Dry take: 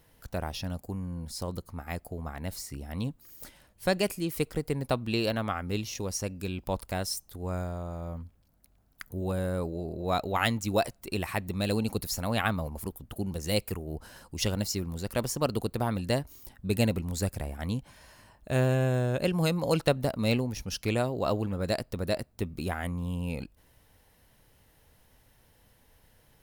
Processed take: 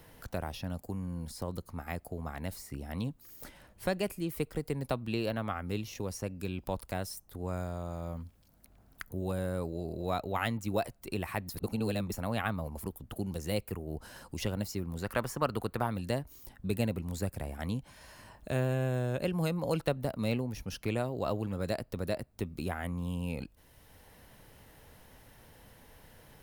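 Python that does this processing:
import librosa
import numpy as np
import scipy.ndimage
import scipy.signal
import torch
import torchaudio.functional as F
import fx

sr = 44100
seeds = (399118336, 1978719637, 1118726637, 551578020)

y = fx.peak_eq(x, sr, hz=1400.0, db=10.5, octaves=1.6, at=(15.02, 15.87))
y = fx.edit(y, sr, fx.reverse_span(start_s=11.49, length_s=0.63), tone=tone)
y = fx.dynamic_eq(y, sr, hz=5600.0, q=0.77, threshold_db=-48.0, ratio=4.0, max_db=-6)
y = fx.band_squash(y, sr, depth_pct=40)
y = F.gain(torch.from_numpy(y), -4.0).numpy()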